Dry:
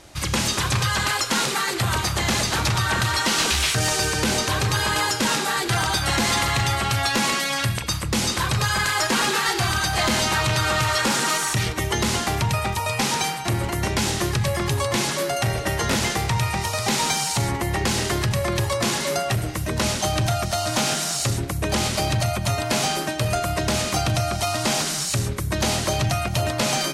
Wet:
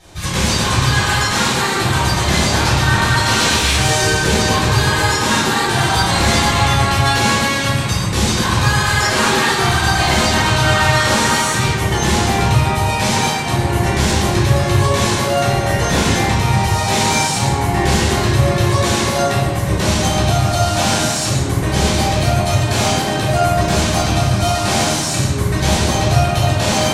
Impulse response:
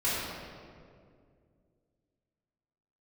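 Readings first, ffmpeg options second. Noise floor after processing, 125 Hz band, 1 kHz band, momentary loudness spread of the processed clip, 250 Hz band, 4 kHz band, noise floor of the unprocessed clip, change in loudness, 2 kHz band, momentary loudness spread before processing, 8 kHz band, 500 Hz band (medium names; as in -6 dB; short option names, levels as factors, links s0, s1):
-19 dBFS, +9.0 dB, +8.0 dB, 3 LU, +8.5 dB, +5.5 dB, -28 dBFS, +7.0 dB, +7.0 dB, 4 LU, +4.5 dB, +7.5 dB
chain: -filter_complex "[1:a]atrim=start_sample=2205,asetrate=70560,aresample=44100[s0];[0:a][s0]afir=irnorm=-1:irlink=0"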